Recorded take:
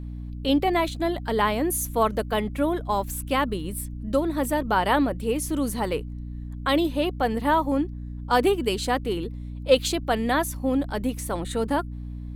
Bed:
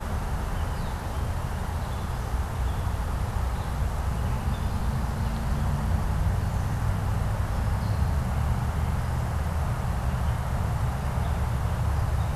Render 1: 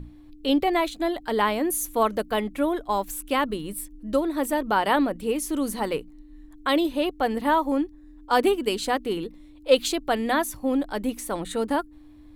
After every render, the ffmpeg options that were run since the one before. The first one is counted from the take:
-af "bandreject=f=60:t=h:w=6,bandreject=f=120:t=h:w=6,bandreject=f=180:t=h:w=6,bandreject=f=240:t=h:w=6"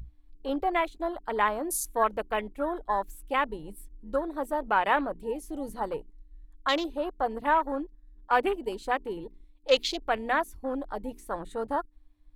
-af "afwtdn=0.0282,equalizer=f=240:t=o:w=2:g=-11"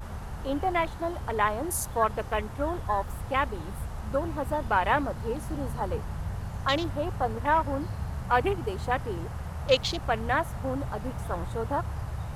-filter_complex "[1:a]volume=-8.5dB[a];[0:a][a]amix=inputs=2:normalize=0"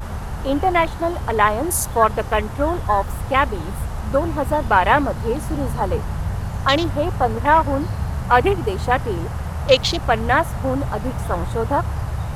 -af "volume=9.5dB,alimiter=limit=-2dB:level=0:latency=1"

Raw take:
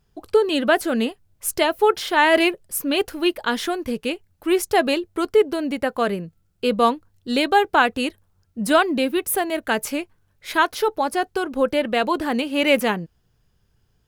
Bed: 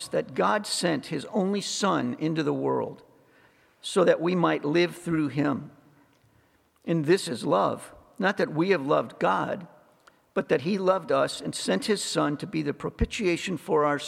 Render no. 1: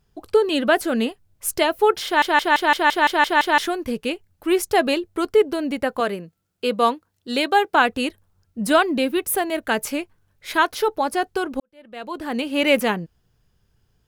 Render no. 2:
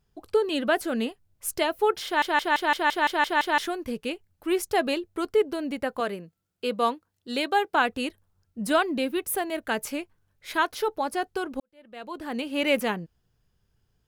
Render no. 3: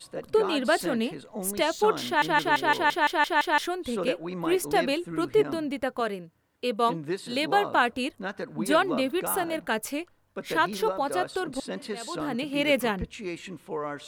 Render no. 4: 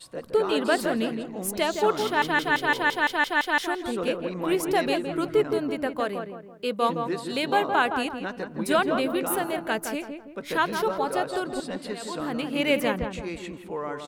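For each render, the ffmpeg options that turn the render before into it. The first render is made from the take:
-filter_complex "[0:a]asettb=1/sr,asplit=3[a][b][c];[a]atrim=end=6.004[d];[b]atrim=start=6:end=7.75,asetpts=PTS-STARTPTS,afade=t=in:d=0.004:c=qsin,afade=t=out:st=1.746:d=0.004:c=qsin,highpass=f=290:p=1[e];[c]atrim=start=7.746[f];[d][e]acrossfade=d=0.004:c1=hsin:c2=qsin[g];[g][f]acrossfade=d=0.004:c1=qsin:c2=hsin,asplit=11[h][i][j][k][l][m][n][o][p][q][r];[h]atrim=end=2.222[s];[i]atrim=start=2.048:end=2.222[t];[j]atrim=start=2.048:end=2.222[u];[k]atrim=start=2.048:end=2.222[v];[l]atrim=start=2.048:end=2.222[w];[m]atrim=start=2.048:end=2.222[x];[n]atrim=start=2.048:end=2.222[y];[o]atrim=start=2.048:end=2.222[z];[p]atrim=start=2.048:end=2.222[aa];[q]atrim=start=3.578:end=11.6,asetpts=PTS-STARTPTS,afade=t=out:st=8.018:d=0.004:c=hsin[ab];[r]atrim=start=11.6,asetpts=PTS-STARTPTS,afade=t=in:d=0.88:c=qua[ac];[s][t]acrossfade=d=0.004:c1=hsin:c2=hsin[ad];[ad][u]acrossfade=d=0.004:c1=hsin:c2=hsin[ae];[ae][v]acrossfade=d=0.004:c1=hsin:c2=hsin[af];[af][w]acrossfade=d=0.004:c1=hsin:c2=hsin[ag];[ag][x]acrossfade=d=0.004:c1=hsin:c2=hsin[ah];[ah][y]acrossfade=d=0.004:c1=hsin:c2=hsin[ai];[ai][z]acrossfade=d=0.004:c1=hsin:c2=hsin[aj];[aj][aa]acrossfade=d=0.004:c1=hsin:c2=hsin[ak];[ab][ac]concat=n=2:v=0:a=1[al];[ak][al]acrossfade=d=0.004:c1=hsin:c2=hsin"
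-af "volume=-6dB"
-filter_complex "[1:a]volume=-9.5dB[a];[0:a][a]amix=inputs=2:normalize=0"
-filter_complex "[0:a]asplit=2[a][b];[b]adelay=166,lowpass=f=1.5k:p=1,volume=-5.5dB,asplit=2[c][d];[d]adelay=166,lowpass=f=1.5k:p=1,volume=0.42,asplit=2[e][f];[f]adelay=166,lowpass=f=1.5k:p=1,volume=0.42,asplit=2[g][h];[h]adelay=166,lowpass=f=1.5k:p=1,volume=0.42,asplit=2[i][j];[j]adelay=166,lowpass=f=1.5k:p=1,volume=0.42[k];[a][c][e][g][i][k]amix=inputs=6:normalize=0"

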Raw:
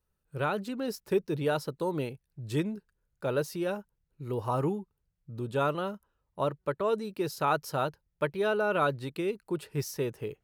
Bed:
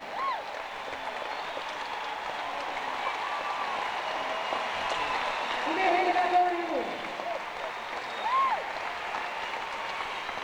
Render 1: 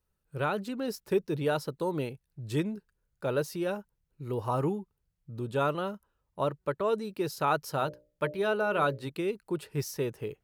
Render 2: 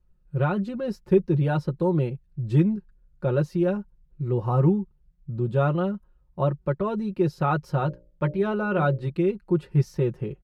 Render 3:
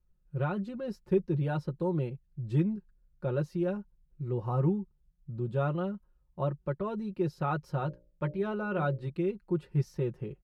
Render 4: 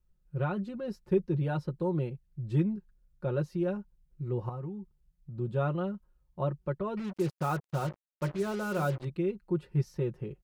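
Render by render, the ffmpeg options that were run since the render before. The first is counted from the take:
-filter_complex "[0:a]asettb=1/sr,asplit=3[a][b][c];[a]atrim=end=7.784[d];[b]atrim=start=7.78:end=9.1,asetpts=PTS-STARTPTS,afade=t=in:d=0.004:c=qsin,afade=t=out:st=1.316:d=0.004:c=qsin,bandreject=f=60:t=h:w=6,bandreject=f=120:t=h:w=6,bandreject=f=180:t=h:w=6,bandreject=f=240:t=h:w=6,bandreject=f=300:t=h:w=6,bandreject=f=360:t=h:w=6,bandreject=f=420:t=h:w=6,bandreject=f=480:t=h:w=6,bandreject=f=540:t=h:w=6,bandreject=f=600:t=h:w=6[e];[c]atrim=start=9.096[f];[d][e]acrossfade=d=0.004:c1=hsin:c2=qsin[g];[g][f]acrossfade=d=0.004:c1=qsin:c2=hsin"
-af "aemphasis=mode=reproduction:type=riaa,aecho=1:1:5.6:0.71"
-af "volume=-7.5dB"
-filter_complex "[0:a]asettb=1/sr,asplit=3[a][b][c];[a]atrim=end=4.494[d];[b]atrim=start=4.49:end=5.38,asetpts=PTS-STARTPTS,afade=t=in:d=0.004:c=qsin,afade=t=out:st=0.886:d=0.004:c=qsin,acompressor=threshold=-39dB:ratio=3:attack=3.2:release=140:knee=1:detection=peak[e];[c]atrim=start=5.376[f];[d][e]acrossfade=d=0.004:c1=hsin:c2=qsin[g];[g][f]acrossfade=d=0.004:c1=qsin:c2=hsin,asettb=1/sr,asplit=3[h][i][j];[h]atrim=end=6.974[k];[i]atrim=start=6.97:end=9.05,asetpts=PTS-STARTPTS,afade=t=in:d=0.004:c=qsin,afade=t=out:st=2.076:d=0.004:c=qsin,acrusher=bits=6:mix=0:aa=0.5[l];[j]atrim=start=9.046[m];[k][l]acrossfade=d=0.004:c1=hsin:c2=qsin[n];[n][m]acrossfade=d=0.004:c1=qsin:c2=hsin"

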